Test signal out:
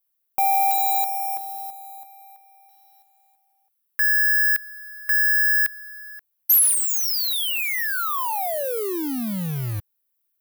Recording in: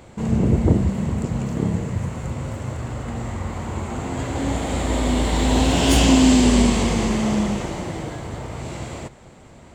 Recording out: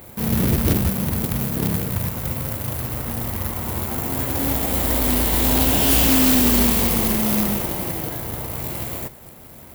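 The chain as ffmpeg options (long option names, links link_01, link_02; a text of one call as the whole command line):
ffmpeg -i in.wav -af "acrusher=bits=2:mode=log:mix=0:aa=0.000001,aexciter=amount=8.4:drive=1.4:freq=10000,asoftclip=type=tanh:threshold=-11dB" out.wav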